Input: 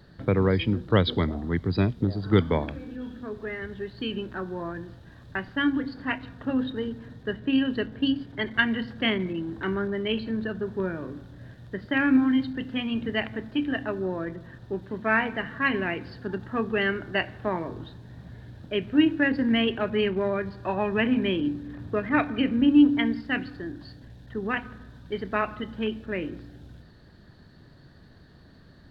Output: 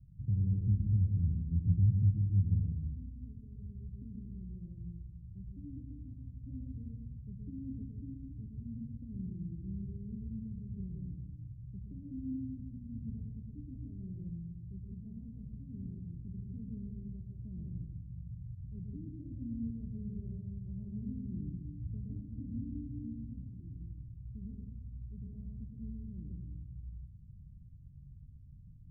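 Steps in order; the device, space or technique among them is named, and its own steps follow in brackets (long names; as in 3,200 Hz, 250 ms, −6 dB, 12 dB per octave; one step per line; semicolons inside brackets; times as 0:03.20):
club heard from the street (brickwall limiter −16 dBFS, peak gain reduction 9 dB; low-pass filter 140 Hz 24 dB per octave; convolution reverb RT60 0.80 s, pre-delay 110 ms, DRR 0.5 dB)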